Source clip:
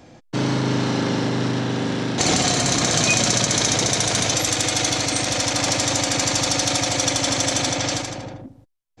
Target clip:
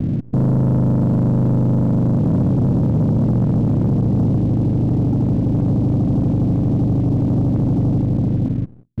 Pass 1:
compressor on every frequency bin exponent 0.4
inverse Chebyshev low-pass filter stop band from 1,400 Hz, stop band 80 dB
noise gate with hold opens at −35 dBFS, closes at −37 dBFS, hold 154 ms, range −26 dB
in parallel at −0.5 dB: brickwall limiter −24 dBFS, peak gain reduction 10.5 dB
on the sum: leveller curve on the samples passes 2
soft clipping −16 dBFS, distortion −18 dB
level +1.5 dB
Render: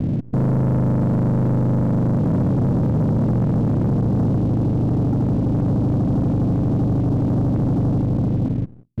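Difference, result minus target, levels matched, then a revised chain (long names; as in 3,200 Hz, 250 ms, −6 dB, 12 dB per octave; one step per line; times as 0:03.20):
soft clipping: distortion +10 dB
compressor on every frequency bin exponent 0.4
inverse Chebyshev low-pass filter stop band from 1,400 Hz, stop band 80 dB
noise gate with hold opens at −35 dBFS, closes at −37 dBFS, hold 154 ms, range −26 dB
in parallel at −0.5 dB: brickwall limiter −24 dBFS, peak gain reduction 10.5 dB
on the sum: leveller curve on the samples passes 2
soft clipping −9.5 dBFS, distortion −28 dB
level +1.5 dB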